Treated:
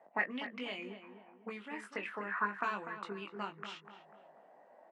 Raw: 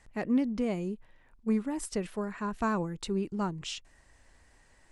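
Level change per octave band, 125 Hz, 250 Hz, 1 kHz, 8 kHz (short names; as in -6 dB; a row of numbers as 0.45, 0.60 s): -17.5 dB, -16.0 dB, -1.5 dB, under -20 dB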